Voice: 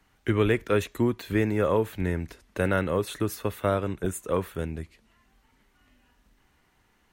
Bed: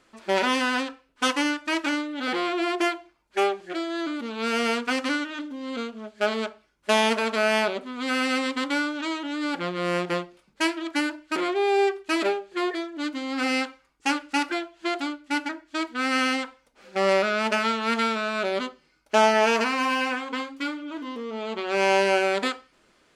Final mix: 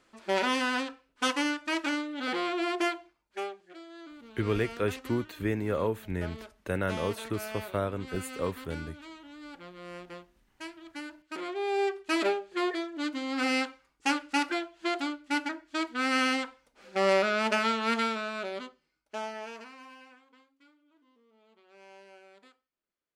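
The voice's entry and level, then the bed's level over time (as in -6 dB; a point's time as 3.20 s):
4.10 s, -5.5 dB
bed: 3.05 s -4.5 dB
3.66 s -18 dB
10.76 s -18 dB
12.17 s -3 dB
17.89 s -3 dB
20.48 s -32.5 dB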